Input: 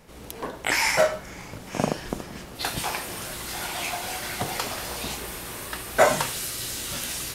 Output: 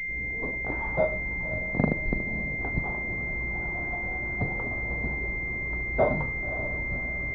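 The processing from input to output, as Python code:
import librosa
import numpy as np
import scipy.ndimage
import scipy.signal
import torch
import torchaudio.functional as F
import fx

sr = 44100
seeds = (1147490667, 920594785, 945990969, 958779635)

p1 = fx.tilt_eq(x, sr, slope=-3.5)
p2 = p1 + fx.echo_diffused(p1, sr, ms=561, feedback_pct=43, wet_db=-12, dry=0)
p3 = fx.pwm(p2, sr, carrier_hz=2100.0)
y = p3 * librosa.db_to_amplitude(-6.0)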